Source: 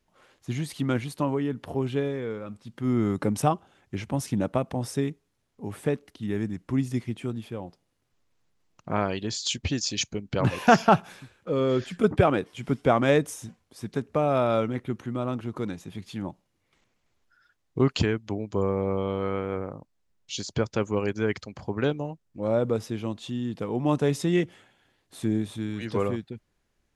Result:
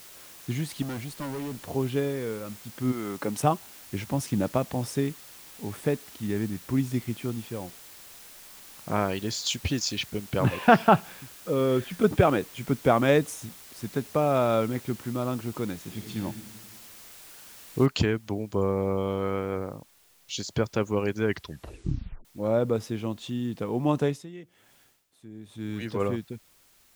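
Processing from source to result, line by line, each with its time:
0:00.82–0:01.65: tube saturation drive 31 dB, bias 0.45
0:02.91–0:03.43: high-pass filter 1,000 Hz → 250 Hz 6 dB per octave
0:04.18–0:06.50: one scale factor per block 7 bits
0:09.96–0:11.91: low-pass filter 3,900 Hz 24 dB per octave
0:15.80–0:16.20: thrown reverb, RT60 1.4 s, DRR 2 dB
0:17.86: noise floor change −48 dB −61 dB
0:21.27: tape stop 0.98 s
0:23.91–0:25.99: tremolo with a sine in dB 1.5 Hz → 0.78 Hz, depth 20 dB

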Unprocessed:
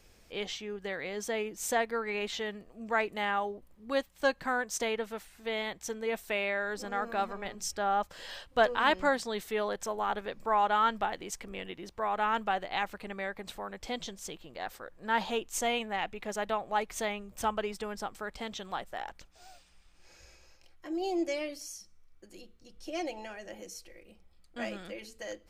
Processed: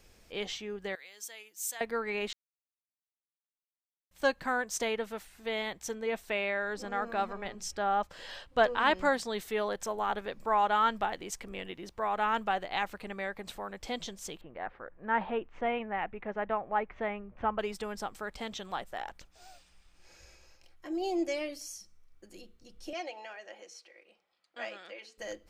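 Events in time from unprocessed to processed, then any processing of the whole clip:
0:00.95–0:01.81: first difference
0:02.33–0:04.11: silence
0:05.95–0:08.96: high-shelf EQ 8,100 Hz −9 dB
0:14.41–0:17.59: low-pass filter 2,200 Hz 24 dB per octave
0:22.93–0:25.18: band-pass filter 590–4,900 Hz

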